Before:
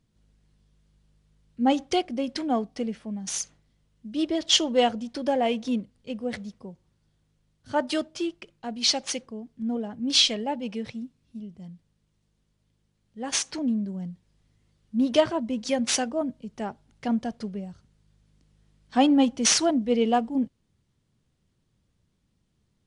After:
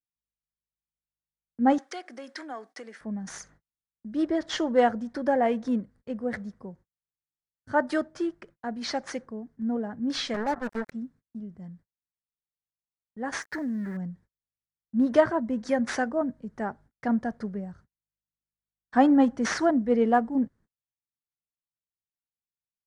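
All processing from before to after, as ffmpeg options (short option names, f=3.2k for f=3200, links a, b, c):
-filter_complex "[0:a]asettb=1/sr,asplit=3[a][b][c];[a]atrim=end=1.784[d];[b]atrim=start=1.78:end=3.01,asetpts=PTS-STARTPTS,afade=t=in:d=0.004:c=qsin,afade=t=out:st=1.226:d=0.004:c=qsin,highpass=f=280:w=0.5412,highpass=f=280:w=1.3066,acompressor=threshold=-33dB:ratio=2.5:attack=3.2:release=140:knee=1:detection=peak,tiltshelf=f=1.2k:g=-9[e];[c]atrim=start=3.006[f];[d][e]acrossfade=d=0.004:c1=hsin:c2=qsin[g];[g][f]acrossfade=d=0.004:c1=qsin:c2=hsin,asettb=1/sr,asplit=3[h][i][j];[h]atrim=end=10.344[k];[i]atrim=start=10.34:end=10.92,asetpts=PTS-STARTPTS,afade=t=in:d=0.004:c=qsin,afade=t=out:st=0.576:d=0.004:c=qsin,highpass=f=83:w=0.5412,highpass=f=83:w=1.3066,acrusher=bits=4:mix=0:aa=0.5[l];[j]atrim=start=10.916[m];[k][l]acrossfade=d=0.004:c1=hsin:c2=qsin[n];[n][m]acrossfade=d=0.004:c1=qsin:c2=hsin,asettb=1/sr,asplit=3[o][p][q];[o]atrim=end=13.404[r];[p]atrim=start=13.4:end=13.97,asetpts=PTS-STARTPTS,afade=t=in:d=0.004:c=qsin,afade=t=out:st=0.566:d=0.004:c=qsin,aeval=exprs='val(0)*gte(abs(val(0)),0.00841)':c=same,equalizer=f=1.8k:w=3.1:g=11,acompressor=threshold=-30dB:ratio=2.5:attack=3.2:release=140:knee=1:detection=peak[s];[q]atrim=start=13.966[t];[r][s]acrossfade=d=0.004:c1=hsin:c2=qsin[u];[u][t]acrossfade=d=0.004:c1=qsin:c2=hsin,acrossover=split=5000[v][w];[w]acompressor=threshold=-34dB:ratio=4:attack=1:release=60[x];[v][x]amix=inputs=2:normalize=0,agate=range=-39dB:threshold=-52dB:ratio=16:detection=peak,highshelf=f=2.2k:t=q:w=3:g=-8"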